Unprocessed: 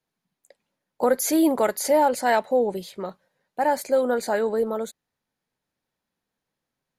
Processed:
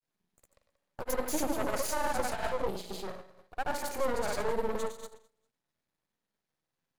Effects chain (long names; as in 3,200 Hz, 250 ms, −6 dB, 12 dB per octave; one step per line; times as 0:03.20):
brickwall limiter −18.5 dBFS, peak gain reduction 9 dB
flutter between parallel walls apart 11.9 metres, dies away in 0.73 s
granular cloud, pitch spread up and down by 0 semitones
half-wave rectification